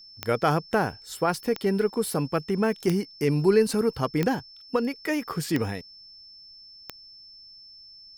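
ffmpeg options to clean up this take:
ffmpeg -i in.wav -af "adeclick=threshold=4,bandreject=frequency=5300:width=30" out.wav

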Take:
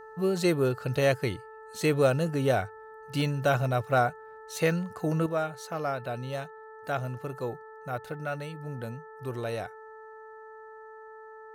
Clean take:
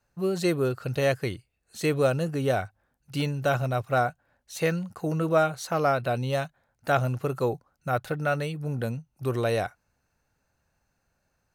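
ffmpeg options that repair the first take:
ffmpeg -i in.wav -af "bandreject=frequency=438.3:width_type=h:width=4,bandreject=frequency=876.6:width_type=h:width=4,bandreject=frequency=1314.9:width_type=h:width=4,bandreject=frequency=1753.2:width_type=h:width=4,asetnsamples=nb_out_samples=441:pad=0,asendcmd='5.26 volume volume 7.5dB',volume=0dB" out.wav

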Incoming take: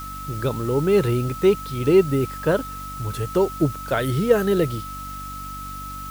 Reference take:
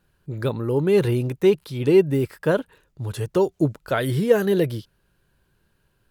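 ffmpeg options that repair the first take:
ffmpeg -i in.wav -af "bandreject=frequency=48.3:width_type=h:width=4,bandreject=frequency=96.6:width_type=h:width=4,bandreject=frequency=144.9:width_type=h:width=4,bandreject=frequency=193.2:width_type=h:width=4,bandreject=frequency=241.5:width_type=h:width=4,bandreject=frequency=289.8:width_type=h:width=4,bandreject=frequency=1300:width=30,afwtdn=0.0063" out.wav

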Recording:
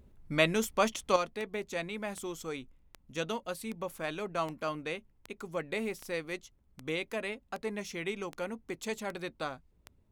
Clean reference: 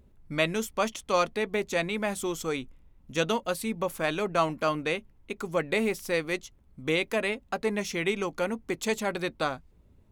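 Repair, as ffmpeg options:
ffmpeg -i in.wav -af "adeclick=threshold=4,asetnsamples=nb_out_samples=441:pad=0,asendcmd='1.16 volume volume 8dB',volume=0dB" out.wav

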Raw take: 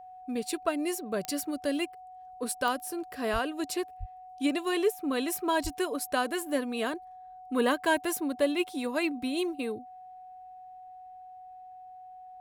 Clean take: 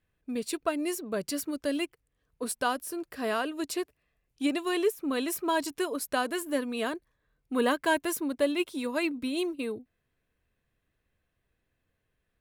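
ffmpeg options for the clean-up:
ffmpeg -i in.wav -filter_complex "[0:a]adeclick=threshold=4,bandreject=frequency=740:width=30,asplit=3[link_01][link_02][link_03];[link_01]afade=type=out:start_time=3.32:duration=0.02[link_04];[link_02]highpass=frequency=140:width=0.5412,highpass=frequency=140:width=1.3066,afade=type=in:start_time=3.32:duration=0.02,afade=type=out:start_time=3.44:duration=0.02[link_05];[link_03]afade=type=in:start_time=3.44:duration=0.02[link_06];[link_04][link_05][link_06]amix=inputs=3:normalize=0,asplit=3[link_07][link_08][link_09];[link_07]afade=type=out:start_time=3.99:duration=0.02[link_10];[link_08]highpass=frequency=140:width=0.5412,highpass=frequency=140:width=1.3066,afade=type=in:start_time=3.99:duration=0.02,afade=type=out:start_time=4.11:duration=0.02[link_11];[link_09]afade=type=in:start_time=4.11:duration=0.02[link_12];[link_10][link_11][link_12]amix=inputs=3:normalize=0,asplit=3[link_13][link_14][link_15];[link_13]afade=type=out:start_time=5.63:duration=0.02[link_16];[link_14]highpass=frequency=140:width=0.5412,highpass=frequency=140:width=1.3066,afade=type=in:start_time=5.63:duration=0.02,afade=type=out:start_time=5.75:duration=0.02[link_17];[link_15]afade=type=in:start_time=5.75:duration=0.02[link_18];[link_16][link_17][link_18]amix=inputs=3:normalize=0" out.wav

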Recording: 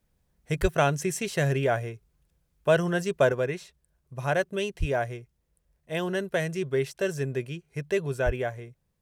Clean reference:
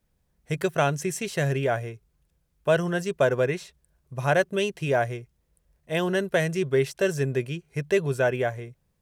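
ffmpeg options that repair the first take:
ffmpeg -i in.wav -filter_complex "[0:a]asplit=3[link_01][link_02][link_03];[link_01]afade=type=out:start_time=0.61:duration=0.02[link_04];[link_02]highpass=frequency=140:width=0.5412,highpass=frequency=140:width=1.3066,afade=type=in:start_time=0.61:duration=0.02,afade=type=out:start_time=0.73:duration=0.02[link_05];[link_03]afade=type=in:start_time=0.73:duration=0.02[link_06];[link_04][link_05][link_06]amix=inputs=3:normalize=0,asplit=3[link_07][link_08][link_09];[link_07]afade=type=out:start_time=4.79:duration=0.02[link_10];[link_08]highpass=frequency=140:width=0.5412,highpass=frequency=140:width=1.3066,afade=type=in:start_time=4.79:duration=0.02,afade=type=out:start_time=4.91:duration=0.02[link_11];[link_09]afade=type=in:start_time=4.91:duration=0.02[link_12];[link_10][link_11][link_12]amix=inputs=3:normalize=0,asplit=3[link_13][link_14][link_15];[link_13]afade=type=out:start_time=8.25:duration=0.02[link_16];[link_14]highpass=frequency=140:width=0.5412,highpass=frequency=140:width=1.3066,afade=type=in:start_time=8.25:duration=0.02,afade=type=out:start_time=8.37:duration=0.02[link_17];[link_15]afade=type=in:start_time=8.37:duration=0.02[link_18];[link_16][link_17][link_18]amix=inputs=3:normalize=0,asetnsamples=nb_out_samples=441:pad=0,asendcmd='3.32 volume volume 4dB',volume=0dB" out.wav

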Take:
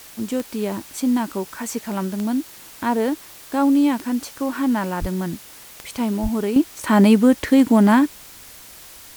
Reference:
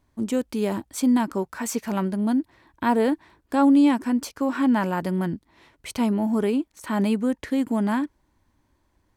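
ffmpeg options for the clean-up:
ffmpeg -i in.wav -filter_complex "[0:a]adeclick=threshold=4,asplit=3[link_01][link_02][link_03];[link_01]afade=type=out:start_time=5:duration=0.02[link_04];[link_02]highpass=frequency=140:width=0.5412,highpass=frequency=140:width=1.3066,afade=type=in:start_time=5:duration=0.02,afade=type=out:start_time=5.12:duration=0.02[link_05];[link_03]afade=type=in:start_time=5.12:duration=0.02[link_06];[link_04][link_05][link_06]amix=inputs=3:normalize=0,asplit=3[link_07][link_08][link_09];[link_07]afade=type=out:start_time=6.22:duration=0.02[link_10];[link_08]highpass=frequency=140:width=0.5412,highpass=frequency=140:width=1.3066,afade=type=in:start_time=6.22:duration=0.02,afade=type=out:start_time=6.34:duration=0.02[link_11];[link_09]afade=type=in:start_time=6.34:duration=0.02[link_12];[link_10][link_11][link_12]amix=inputs=3:normalize=0,afwtdn=0.0079,asetnsamples=nb_out_samples=441:pad=0,asendcmd='6.56 volume volume -9.5dB',volume=0dB" out.wav

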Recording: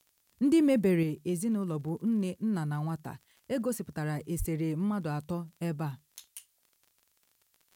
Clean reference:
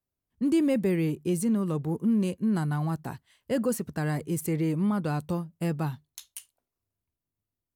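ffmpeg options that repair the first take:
ffmpeg -i in.wav -filter_complex "[0:a]adeclick=threshold=4,asplit=3[link_01][link_02][link_03];[link_01]afade=type=out:start_time=4.38:duration=0.02[link_04];[link_02]highpass=frequency=140:width=0.5412,highpass=frequency=140:width=1.3066,afade=type=in:start_time=4.38:duration=0.02,afade=type=out:start_time=4.5:duration=0.02[link_05];[link_03]afade=type=in:start_time=4.5:duration=0.02[link_06];[link_04][link_05][link_06]amix=inputs=3:normalize=0,agate=range=-21dB:threshold=-65dB,asetnsamples=nb_out_samples=441:pad=0,asendcmd='1.03 volume volume 4.5dB',volume=0dB" out.wav

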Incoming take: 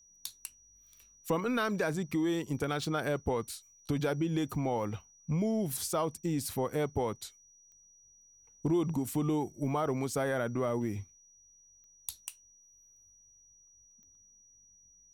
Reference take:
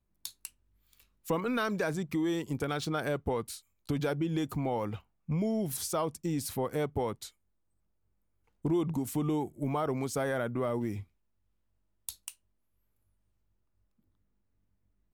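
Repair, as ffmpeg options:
ffmpeg -i in.wav -af "adeclick=threshold=4,bandreject=frequency=5800:width=30" out.wav

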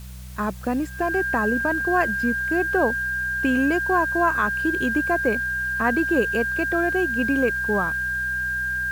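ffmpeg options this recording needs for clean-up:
ffmpeg -i in.wav -af "bandreject=frequency=62.7:width_type=h:width=4,bandreject=frequency=125.4:width_type=h:width=4,bandreject=frequency=188.1:width_type=h:width=4,bandreject=frequency=1600:width=30,afwtdn=0.004" out.wav

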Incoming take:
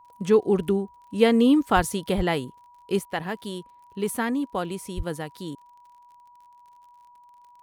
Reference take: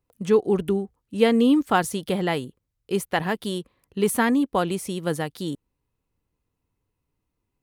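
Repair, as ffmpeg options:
ffmpeg -i in.wav -filter_complex "[0:a]adeclick=threshold=4,bandreject=frequency=970:width=30,asplit=3[link_01][link_02][link_03];[link_01]afade=type=out:start_time=1.75:duration=0.02[link_04];[link_02]highpass=frequency=140:width=0.5412,highpass=frequency=140:width=1.3066,afade=type=in:start_time=1.75:duration=0.02,afade=type=out:start_time=1.87:duration=0.02[link_05];[link_03]afade=type=in:start_time=1.87:duration=0.02[link_06];[link_04][link_05][link_06]amix=inputs=3:normalize=0,asplit=3[link_07][link_08][link_09];[link_07]afade=type=out:start_time=2.16:duration=0.02[link_10];[link_08]highpass=frequency=140:width=0.5412,highpass=frequency=140:width=1.3066,afade=type=in:start_time=2.16:duration=0.02,afade=type=out:start_time=2.28:duration=0.02[link_11];[link_09]afade=type=in:start_time=2.28:duration=0.02[link_12];[link_10][link_11][link_12]amix=inputs=3:normalize=0,asplit=3[link_13][link_14][link_15];[link_13]afade=type=out:start_time=4.96:duration=0.02[link_16];[link_14]highpass=frequency=140:width=0.5412,highpass=frequency=140:width=1.3066,afade=type=in:start_time=4.96:duration=0.02,afade=type=out:start_time=5.08:duration=0.02[link_17];[link_15]afade=type=in:start_time=5.08:duration=0.02[link_18];[link_16][link_17][link_18]amix=inputs=3:normalize=0,asetnsamples=nb_out_samples=441:pad=0,asendcmd='2.99 volume volume 5.5dB',volume=0dB" out.wav

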